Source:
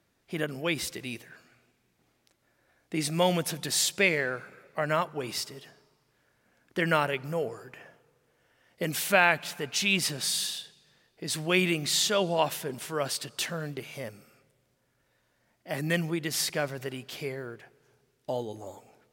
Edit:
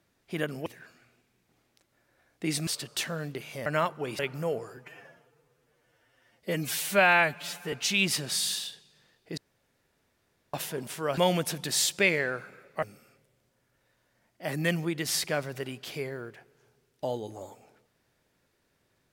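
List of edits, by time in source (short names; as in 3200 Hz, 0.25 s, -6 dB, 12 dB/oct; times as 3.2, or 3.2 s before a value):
0.66–1.16 cut
3.17–4.82 swap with 13.09–14.08
5.35–7.09 cut
7.67–9.64 stretch 1.5×
11.29–12.45 room tone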